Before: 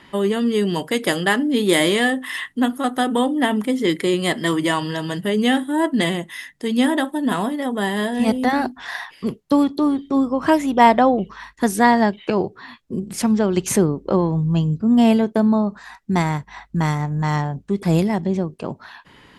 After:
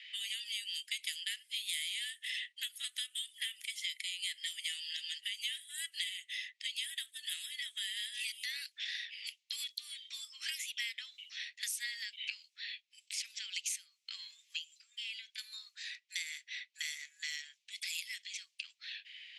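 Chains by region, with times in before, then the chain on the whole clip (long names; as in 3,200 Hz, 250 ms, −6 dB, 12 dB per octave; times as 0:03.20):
0:14.72–0:15.38: spectral tilt +1.5 dB per octave + mains-hum notches 60/120/180 Hz + downward compressor 16 to 1, threshold −26 dBFS
whole clip: low-pass that shuts in the quiet parts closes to 2,900 Hz, open at −15 dBFS; Butterworth high-pass 2,200 Hz 48 dB per octave; downward compressor 5 to 1, threshold −44 dBFS; level +6 dB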